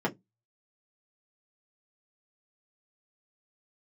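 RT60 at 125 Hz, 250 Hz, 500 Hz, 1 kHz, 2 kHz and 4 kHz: 0.30, 0.25, 0.20, 0.10, 0.10, 0.10 s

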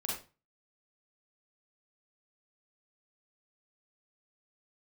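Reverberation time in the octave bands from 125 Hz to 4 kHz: 0.45, 0.35, 0.30, 0.30, 0.30, 0.30 s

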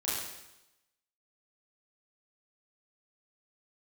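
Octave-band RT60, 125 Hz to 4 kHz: 0.90, 0.95, 0.90, 0.95, 0.90, 0.95 s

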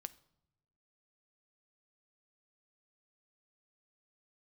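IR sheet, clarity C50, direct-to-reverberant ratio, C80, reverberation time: 19.5 dB, 13.0 dB, 23.0 dB, not exponential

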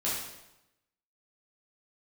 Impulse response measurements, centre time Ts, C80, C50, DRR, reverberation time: 63 ms, 4.0 dB, 0.5 dB, -8.5 dB, 0.90 s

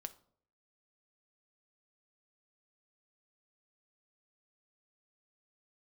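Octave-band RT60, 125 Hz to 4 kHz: 0.75, 0.65, 0.65, 0.55, 0.35, 0.35 s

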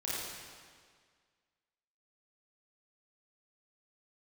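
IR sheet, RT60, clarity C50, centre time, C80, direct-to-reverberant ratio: 1.8 s, -4.5 dB, 0.13 s, -1.5 dB, -8.5 dB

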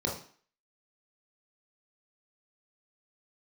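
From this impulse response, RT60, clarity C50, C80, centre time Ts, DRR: 0.45 s, 5.5 dB, 11.5 dB, 31 ms, -2.5 dB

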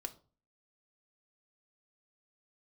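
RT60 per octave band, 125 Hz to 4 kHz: 0.50, 0.50, 0.40, 0.35, 0.25, 0.25 s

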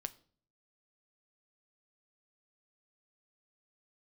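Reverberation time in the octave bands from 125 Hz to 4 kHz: 0.75, 0.65, 0.55, 0.45, 0.35, 0.40 s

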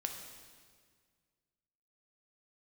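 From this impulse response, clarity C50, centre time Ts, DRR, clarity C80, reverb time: 5.5 dB, 42 ms, 3.0 dB, 7.0 dB, 1.8 s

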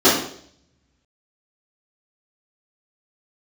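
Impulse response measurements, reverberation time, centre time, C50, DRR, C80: 0.60 s, 41 ms, 4.5 dB, -13.5 dB, 8.0 dB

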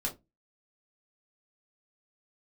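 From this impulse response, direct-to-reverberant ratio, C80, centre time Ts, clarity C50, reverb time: -1.5 dB, 23.5 dB, 14 ms, 14.5 dB, 0.20 s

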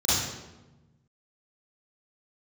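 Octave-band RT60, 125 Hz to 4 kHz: 1.9, 1.6, 1.2, 1.0, 0.85, 0.75 s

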